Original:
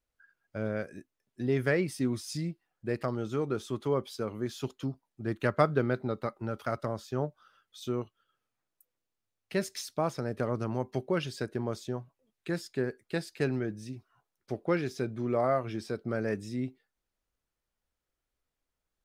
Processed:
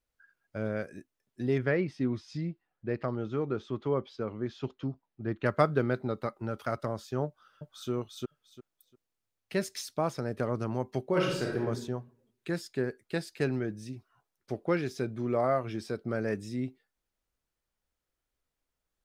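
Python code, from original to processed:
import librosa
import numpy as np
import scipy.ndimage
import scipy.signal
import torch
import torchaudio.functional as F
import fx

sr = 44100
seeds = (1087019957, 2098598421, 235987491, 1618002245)

y = fx.air_absorb(x, sr, metres=210.0, at=(1.58, 5.46))
y = fx.echo_throw(y, sr, start_s=7.26, length_s=0.64, ms=350, feedback_pct=20, wet_db=-0.5)
y = fx.reverb_throw(y, sr, start_s=11.06, length_s=0.56, rt60_s=0.8, drr_db=-2.0)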